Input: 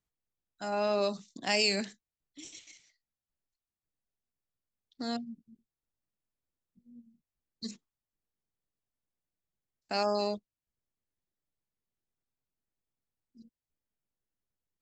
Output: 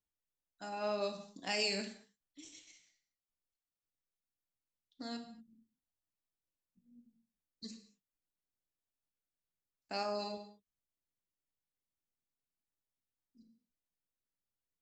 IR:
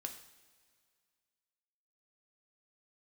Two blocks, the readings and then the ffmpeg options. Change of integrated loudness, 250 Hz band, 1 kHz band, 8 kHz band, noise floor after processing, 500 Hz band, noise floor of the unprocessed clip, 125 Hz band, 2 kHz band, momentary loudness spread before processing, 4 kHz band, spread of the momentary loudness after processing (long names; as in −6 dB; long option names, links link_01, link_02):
−7.0 dB, −8.0 dB, −7.0 dB, −6.5 dB, below −85 dBFS, −8.0 dB, below −85 dBFS, can't be measured, −6.5 dB, 21 LU, −6.5 dB, 22 LU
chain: -filter_complex "[1:a]atrim=start_sample=2205,afade=type=out:start_time=0.29:duration=0.01,atrim=end_sample=13230[link_01];[0:a][link_01]afir=irnorm=-1:irlink=0,volume=-4dB"